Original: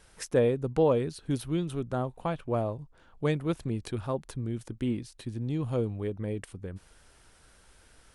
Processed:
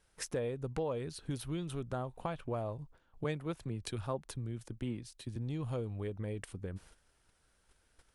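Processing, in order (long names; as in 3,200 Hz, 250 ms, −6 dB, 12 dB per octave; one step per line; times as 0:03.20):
noise gate −54 dBFS, range −12 dB
dynamic equaliser 270 Hz, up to −5 dB, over −38 dBFS, Q 0.75
downward compressor 4 to 1, threshold −32 dBFS, peak gain reduction 9 dB
hard clipping −24.5 dBFS, distortion −35 dB
0:03.24–0:05.36: multiband upward and downward expander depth 70%
level −1.5 dB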